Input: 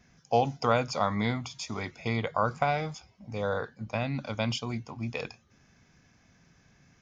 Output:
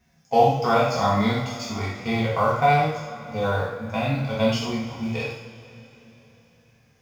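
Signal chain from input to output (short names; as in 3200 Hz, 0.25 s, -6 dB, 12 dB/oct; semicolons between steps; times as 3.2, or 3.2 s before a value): G.711 law mismatch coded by A; two-slope reverb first 0.6 s, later 3.9 s, from -18 dB, DRR -6 dB; harmonic-percussive split harmonic +9 dB; gain -5.5 dB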